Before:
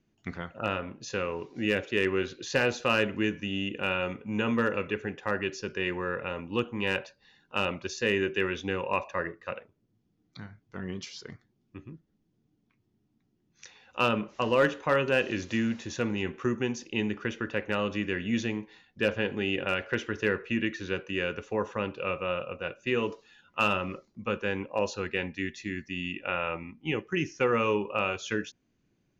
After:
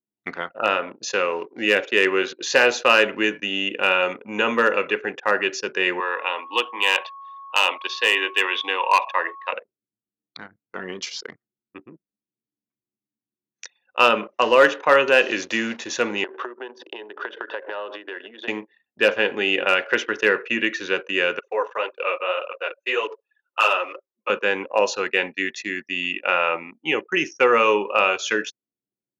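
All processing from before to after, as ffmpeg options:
ffmpeg -i in.wav -filter_complex "[0:a]asettb=1/sr,asplit=3[link_01][link_02][link_03];[link_01]atrim=end=6.004[link_04];[link_02]atrim=start=6:end=9.53,asetpts=PTS-STARTPTS,afade=type=in:duration=0.004:curve=qsin,afade=type=out:start_time=3.526:duration=0.004:curve=qsin,highpass=frequency=340:width=0.5412,highpass=frequency=340:width=1.3066,equalizer=frequency=390:width_type=q:width=4:gain=-8,equalizer=frequency=560:width_type=q:width=4:gain=-7,equalizer=frequency=960:width_type=q:width=4:gain=7,equalizer=frequency=1400:width_type=q:width=4:gain=-7,equalizer=frequency=3300:width_type=q:width=4:gain=9,lowpass=frequency=4300:width=0.5412,lowpass=frequency=4300:width=1.3066,asoftclip=type=hard:threshold=-19.5dB,aeval=exprs='val(0)+0.00447*sin(2*PI*1100*n/s)':channel_layout=same[link_05];[link_03]atrim=start=9.526[link_06];[link_04][link_05]acrossfade=duration=0.004:curve1=hsin:curve2=qsin[link_07];[link_07][link_06]acrossfade=duration=0.004:curve1=qsin:curve2=hsin,asettb=1/sr,asplit=3[link_08][link_09][link_10];[link_08]atrim=end=16.244[link_11];[link_09]atrim=start=16.24:end=18.48,asetpts=PTS-STARTPTS,afade=type=in:duration=0.004:curve=qsin,afade=type=out:start_time=2.236:duration=0.004:curve=qsin,acompressor=threshold=-38dB:ratio=20:attack=3.2:release=140:knee=1:detection=peak,highpass=frequency=300:width=0.5412,highpass=frequency=300:width=1.3066,equalizer=frequency=400:width_type=q:width=4:gain=5,equalizer=frequency=610:width_type=q:width=4:gain=8,equalizer=frequency=940:width_type=q:width=4:gain=9,equalizer=frequency=1600:width_type=q:width=4:gain=6,equalizer=frequency=2300:width_type=q:width=4:gain=-8,equalizer=frequency=3500:width_type=q:width=4:gain=6,lowpass=frequency=4500:width=0.5412,lowpass=frequency=4500:width=1.3066,aecho=1:1:83:0.0708,atrim=end_sample=98784[link_12];[link_10]atrim=start=18.476[link_13];[link_11][link_12]acrossfade=duration=0.004:curve1=hsin:curve2=qsin[link_14];[link_14][link_13]acrossfade=duration=0.004:curve1=qsin:curve2=hsin,asettb=1/sr,asplit=3[link_15][link_16][link_17];[link_15]atrim=end=21.394[link_18];[link_16]atrim=start=21.39:end=24.3,asetpts=PTS-STARTPTS,afade=type=in:duration=0.004:curve=qsin,afade=type=out:start_time=2.906:duration=0.004:curve=qsin,highpass=frequency=380:width=0.5412,highpass=frequency=380:width=1.3066,flanger=delay=0.5:depth=6.9:regen=0:speed=1.8:shape=triangular[link_19];[link_17]atrim=start=24.296[link_20];[link_18][link_19]acrossfade=duration=0.004:curve1=hsin:curve2=qsin[link_21];[link_21][link_20]acrossfade=duration=0.004:curve1=qsin:curve2=hsin,anlmdn=0.0251,highpass=450,acontrast=74,volume=4.5dB" out.wav

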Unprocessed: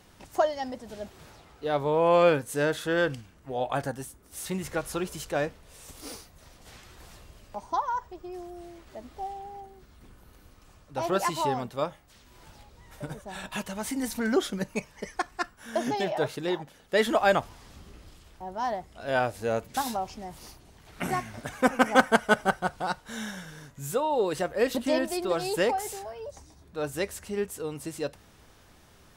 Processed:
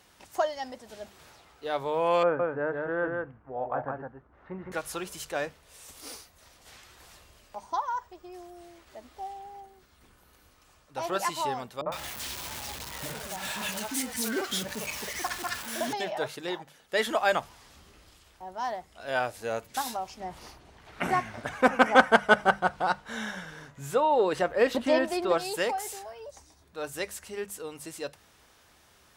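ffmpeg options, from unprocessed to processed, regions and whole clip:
ffmpeg -i in.wav -filter_complex "[0:a]asettb=1/sr,asplit=3[link_01][link_02][link_03];[link_01]atrim=end=2.234[link_04];[link_02]atrim=start=2.23:end=4.72,asetpts=PTS-STARTPTS,afade=type=in:duration=0.004:curve=qsin,afade=type=out:start_time=2.486:duration=0.004:curve=qsin,lowpass=frequency=1500:width=0.5412,lowpass=frequency=1500:width=1.3066,aecho=1:1:162:0.668,atrim=end_sample=109809[link_05];[link_03]atrim=start=4.716[link_06];[link_04][link_05]acrossfade=duration=0.004:curve1=hsin:curve2=qsin[link_07];[link_07][link_06]acrossfade=duration=0.004:curve1=qsin:curve2=hsin,asettb=1/sr,asplit=3[link_08][link_09][link_10];[link_08]atrim=end=11.814[link_11];[link_09]atrim=start=11.81:end=15.93,asetpts=PTS-STARTPTS,afade=type=in:duration=0.004:curve=qsin,afade=type=out:start_time=4.116:duration=0.004:curve=qsin,aeval=exprs='val(0)+0.5*0.0335*sgn(val(0))':channel_layout=same,highpass=59,acrossover=split=450|1400[link_12][link_13][link_14];[link_13]adelay=50[link_15];[link_14]adelay=110[link_16];[link_12][link_15][link_16]amix=inputs=3:normalize=0,atrim=end_sample=181692[link_17];[link_10]atrim=start=15.926[link_18];[link_11][link_17]acrossfade=duration=0.004:curve1=hsin:curve2=qsin[link_19];[link_19][link_18]acrossfade=duration=0.004:curve1=qsin:curve2=hsin,asettb=1/sr,asplit=3[link_20][link_21][link_22];[link_20]atrim=end=20.204[link_23];[link_21]atrim=start=20.2:end=25.38,asetpts=PTS-STARTPTS,afade=type=in:duration=0.004:curve=qsin,afade=type=out:start_time=5.176:duration=0.004:curve=qsin,lowpass=frequency=2000:poles=1,acontrast=77[link_24];[link_22]atrim=start=25.376[link_25];[link_23][link_24]acrossfade=duration=0.004:curve1=hsin:curve2=qsin[link_26];[link_26][link_25]acrossfade=duration=0.004:curve1=qsin:curve2=hsin,highpass=49,equalizer=frequency=150:width=0.32:gain=-8.5,bandreject=frequency=50:width_type=h:width=6,bandreject=frequency=100:width_type=h:width=6,bandreject=frequency=150:width_type=h:width=6,bandreject=frequency=200:width_type=h:width=6" out.wav

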